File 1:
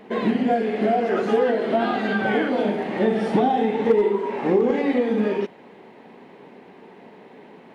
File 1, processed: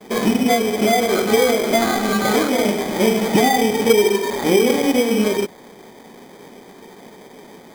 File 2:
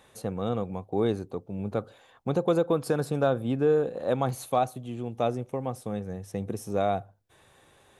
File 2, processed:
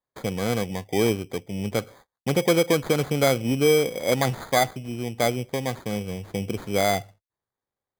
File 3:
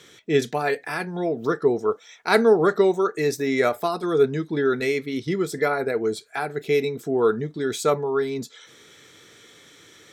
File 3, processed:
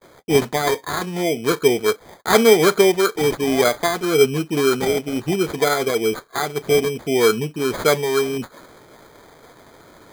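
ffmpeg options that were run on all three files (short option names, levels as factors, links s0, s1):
-af "acrusher=samples=16:mix=1:aa=0.000001,agate=range=0.0158:threshold=0.00282:ratio=16:detection=peak,volume=1.58"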